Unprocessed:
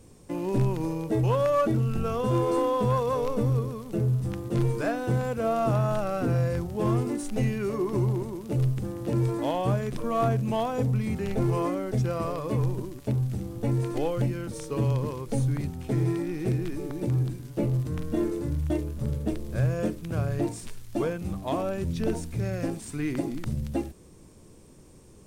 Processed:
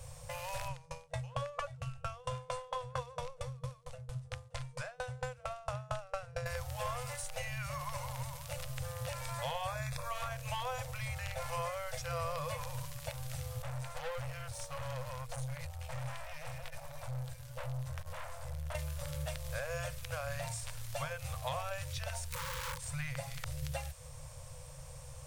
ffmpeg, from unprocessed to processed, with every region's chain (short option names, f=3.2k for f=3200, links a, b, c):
-filter_complex "[0:a]asettb=1/sr,asplit=3[a][b][c];[a]atrim=end=0.684[d];[b]atrim=start=0.68:end=6.46,asetpts=PTS-STARTPTS,afade=t=in:d=0.004:c=qsin,afade=t=out:st=5.776:d=0.004:c=qsin,lowpass=f=9.6k:w=0.5412,lowpass=f=9.6k:w=1.3066,aeval=exprs='val(0)*pow(10,-37*if(lt(mod(4.4*n/s,1),2*abs(4.4)/1000),1-mod(4.4*n/s,1)/(2*abs(4.4)/1000),(mod(4.4*n/s,1)-2*abs(4.4)/1000)/(1-2*abs(4.4)/1000))/20)':c=same[e];[c]atrim=start=6.456[f];[d][e]acrossfade=d=0.004:c1=hsin:c2=qsin[g];[g][f]acrossfade=d=0.004:c1=qsin:c2=hsin,asettb=1/sr,asplit=3[h][i][j];[h]atrim=end=9.674[k];[i]atrim=start=9.67:end=10.1,asetpts=PTS-STARTPTS,afade=t=in:d=0.004:c=qsin,afade=t=out:st=0.426:d=0.004:c=qsin,aeval=exprs='sgn(val(0))*max(abs(val(0))-0.00106,0)':c=same,asuperstop=centerf=3000:order=8:qfactor=5.7[l];[j]atrim=start=10.096[m];[k][l]acrossfade=d=0.004:c1=hsin:c2=qsin[n];[n][m]acrossfade=d=0.004:c1=qsin:c2=hsin,asettb=1/sr,asplit=3[o][p][q];[o]atrim=end=13.624[r];[p]atrim=start=13.62:end=18.75,asetpts=PTS-STARTPTS,afade=t=in:d=0.004:c=qsin,afade=t=out:st=5.126:d=0.004:c=qsin,flanger=delay=2.8:depth=1:regen=-42:speed=1.2:shape=triangular,aeval=exprs='(tanh(56.2*val(0)+0.65)-tanh(0.65))/56.2':c=same[s];[q]atrim=start=18.746[t];[r][s]acrossfade=d=0.004:c1=hsin:c2=qsin[u];[u][t]acrossfade=d=0.004:c1=qsin:c2=hsin,asettb=1/sr,asplit=3[v][w][x];[v]atrim=end=22.284[y];[w]atrim=start=22.28:end=22.83,asetpts=PTS-STARTPTS,afade=t=in:d=0.004:c=qsin,afade=t=out:st=0.546:d=0.004:c=qsin,bandreject=f=50:t=h:w=6,bandreject=f=100:t=h:w=6,bandreject=f=150:t=h:w=6,bandreject=f=200:t=h:w=6,bandreject=f=250:t=h:w=6,bandreject=f=300:t=h:w=6,aeval=exprs='(mod(33.5*val(0)+1,2)-1)/33.5':c=same,asuperstop=centerf=690:order=20:qfactor=2.3[z];[x]atrim=start=22.826[aa];[y][z]acrossfade=d=0.004:c1=hsin:c2=qsin[ab];[ab][aa]acrossfade=d=0.004:c1=qsin:c2=hsin,afftfilt=real='re*lt(hypot(re,im),0.316)':imag='im*lt(hypot(re,im),0.316)':win_size=1024:overlap=0.75,acrossover=split=110|1300[ac][ad][ae];[ac]acompressor=threshold=-49dB:ratio=4[af];[ad]acompressor=threshold=-45dB:ratio=4[ag];[ae]acompressor=threshold=-48dB:ratio=4[ah];[af][ag][ah]amix=inputs=3:normalize=0,afftfilt=real='re*(1-between(b*sr/4096,160,480))':imag='im*(1-between(b*sr/4096,160,480))':win_size=4096:overlap=0.75,volume=6dB"